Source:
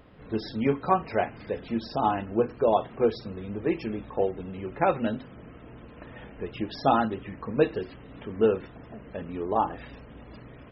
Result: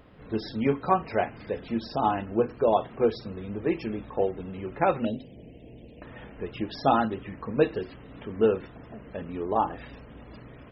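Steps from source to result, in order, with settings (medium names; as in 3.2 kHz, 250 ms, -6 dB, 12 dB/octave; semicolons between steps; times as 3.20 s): 5.05–6.02 s: Chebyshev band-stop 610–2700 Hz, order 2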